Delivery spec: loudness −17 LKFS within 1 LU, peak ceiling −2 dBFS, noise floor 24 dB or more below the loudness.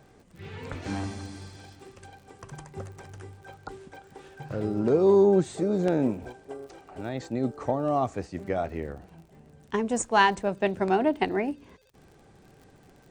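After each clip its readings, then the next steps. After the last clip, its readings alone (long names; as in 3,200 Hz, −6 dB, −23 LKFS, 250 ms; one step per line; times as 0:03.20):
crackle rate 46 per second; integrated loudness −26.5 LKFS; sample peak −8.5 dBFS; target loudness −17.0 LKFS
→ click removal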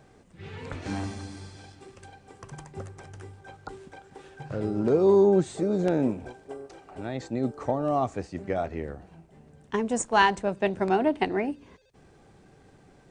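crackle rate 0 per second; integrated loudness −26.5 LKFS; sample peak −8.5 dBFS; target loudness −17.0 LKFS
→ level +9.5 dB
brickwall limiter −2 dBFS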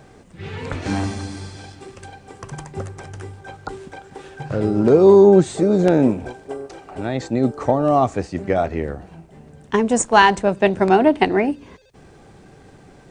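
integrated loudness −17.0 LKFS; sample peak −2.0 dBFS; background noise floor −47 dBFS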